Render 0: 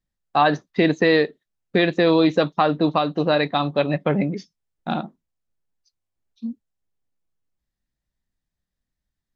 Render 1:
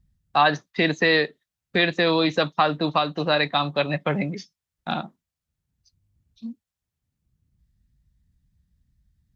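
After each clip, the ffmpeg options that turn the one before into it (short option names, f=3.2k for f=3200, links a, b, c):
-filter_complex "[0:a]highpass=60,equalizer=f=310:t=o:w=2.8:g=-9.5,acrossover=split=230|740[a][b][c];[a]acompressor=mode=upward:threshold=-49dB:ratio=2.5[d];[d][b][c]amix=inputs=3:normalize=0,volume=3.5dB"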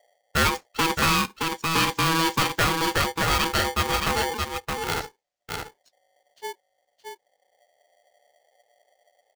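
-af "aecho=1:1:620:0.531,aresample=16000,asoftclip=type=tanh:threshold=-14.5dB,aresample=44100,aeval=exprs='val(0)*sgn(sin(2*PI*650*n/s))':c=same"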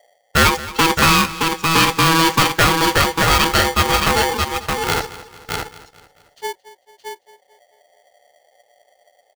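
-filter_complex "[0:a]asplit=2[a][b];[b]acrusher=bits=3:mode=log:mix=0:aa=0.000001,volume=-8dB[c];[a][c]amix=inputs=2:normalize=0,aecho=1:1:221|442|663|884:0.141|0.0678|0.0325|0.0156,volume=5dB"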